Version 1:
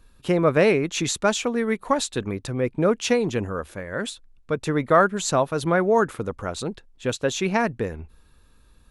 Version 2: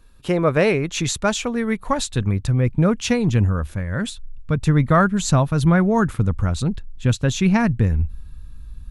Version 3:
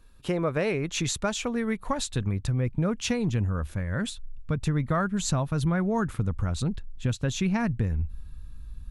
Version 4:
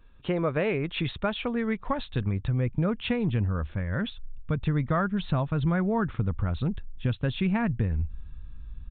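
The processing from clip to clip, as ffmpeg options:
-af "asubboost=boost=10:cutoff=140,volume=1.5dB"
-af "acompressor=threshold=-20dB:ratio=3,volume=-4dB"
-af "aresample=8000,aresample=44100"

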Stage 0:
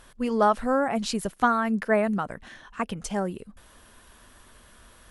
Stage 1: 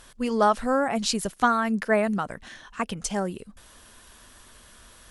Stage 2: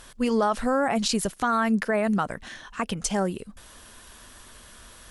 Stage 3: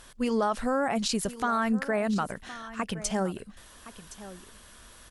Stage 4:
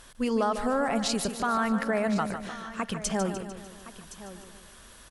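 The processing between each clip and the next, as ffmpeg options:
-af "equalizer=f=6.2k:w=0.54:g=6.5"
-af "alimiter=limit=-17.5dB:level=0:latency=1:release=31,volume=3dB"
-af "aecho=1:1:1066:0.168,volume=-3.5dB"
-af "aecho=1:1:149|298|447|596|745|894:0.335|0.178|0.0941|0.0499|0.0264|0.014"

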